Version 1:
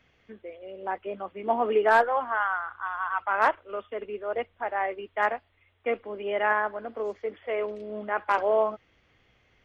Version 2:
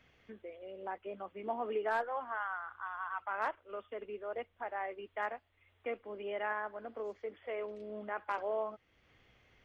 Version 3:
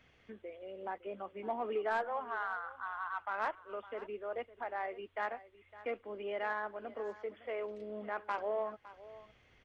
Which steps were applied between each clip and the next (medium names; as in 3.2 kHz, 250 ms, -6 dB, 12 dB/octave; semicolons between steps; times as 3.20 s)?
compression 1.5:1, threshold -49 dBFS, peak gain reduction 12 dB; trim -2 dB
in parallel at -5.5 dB: saturation -31 dBFS, distortion -14 dB; on the sum: delay 559 ms -17 dB; resampled via 22.05 kHz; trim -3 dB